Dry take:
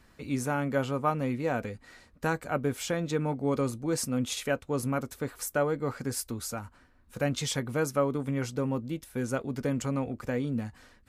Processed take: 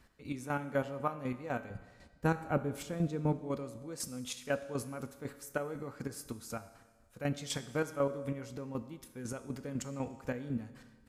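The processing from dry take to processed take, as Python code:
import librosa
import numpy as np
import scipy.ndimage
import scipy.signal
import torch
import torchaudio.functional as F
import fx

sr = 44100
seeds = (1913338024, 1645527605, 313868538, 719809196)

p1 = fx.low_shelf(x, sr, hz=470.0, db=10.5, at=(1.7, 3.37))
p2 = fx.rider(p1, sr, range_db=5, speed_s=2.0)
p3 = p1 + (p2 * librosa.db_to_amplitude(0.0))
p4 = fx.chopper(p3, sr, hz=4.0, depth_pct=65, duty_pct=30)
p5 = fx.comb_fb(p4, sr, f0_hz=62.0, decay_s=0.99, harmonics='odd', damping=0.0, mix_pct=60)
p6 = fx.rev_schroeder(p5, sr, rt60_s=1.5, comb_ms=28, drr_db=14.5)
y = p6 * librosa.db_to_amplitude(-4.0)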